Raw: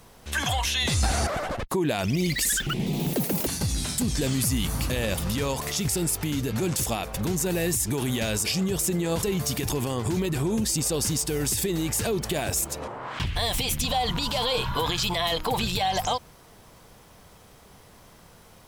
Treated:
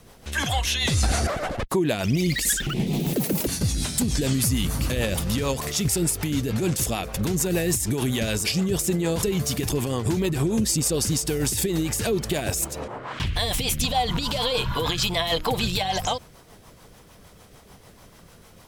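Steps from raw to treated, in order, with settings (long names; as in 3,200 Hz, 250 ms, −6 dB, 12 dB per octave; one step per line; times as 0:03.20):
rotating-speaker cabinet horn 6.7 Hz
level +4 dB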